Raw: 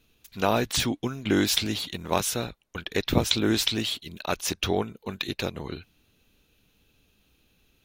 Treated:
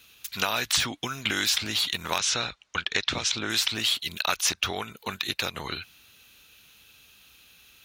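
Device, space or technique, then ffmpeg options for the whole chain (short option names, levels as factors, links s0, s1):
mastering chain: -filter_complex "[0:a]equalizer=f=360:t=o:w=2.2:g=-5.5,asettb=1/sr,asplit=3[s0][s1][s2];[s0]atrim=end=2.184[s3];[s1]atrim=start=2.18:end=3.5,asetpts=PTS-STARTPTS,afade=t=in:d=0.004:c=qsin,afade=t=out:st=1.316:d=0.004:c=qsin,lowpass=f=6800:w=0.5412,lowpass=f=6800:w=1.3066[s4];[s2]atrim=start=3.496[s5];[s3][s4]acrossfade=d=0.004:c1=hsin:c2=qsin[s6];[s6][s5]acrossfade=d=0.004:c1=qsin:c2=hsin,highpass=50,equalizer=f=1300:t=o:w=0.36:g=2.5,acrossover=split=1700|7800[s7][s8][s9];[s7]acompressor=threshold=0.0355:ratio=4[s10];[s8]acompressor=threshold=0.0224:ratio=4[s11];[s9]acompressor=threshold=0.00398:ratio=4[s12];[s10][s11][s12]amix=inputs=3:normalize=0,acompressor=threshold=0.0141:ratio=2,tiltshelf=f=640:g=-7,alimiter=level_in=5.62:limit=0.891:release=50:level=0:latency=1,volume=0.422"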